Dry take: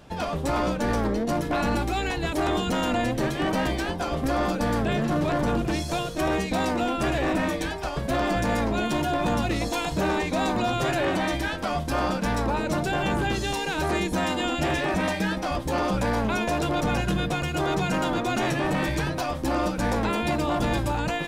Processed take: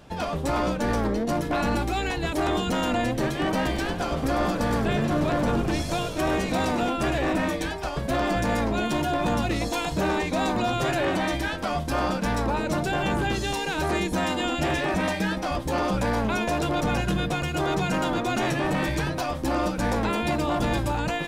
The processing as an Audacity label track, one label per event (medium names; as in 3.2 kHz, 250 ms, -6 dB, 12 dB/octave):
3.610000	6.900000	frequency-shifting echo 100 ms, feedback 63%, per repeat -53 Hz, level -11 dB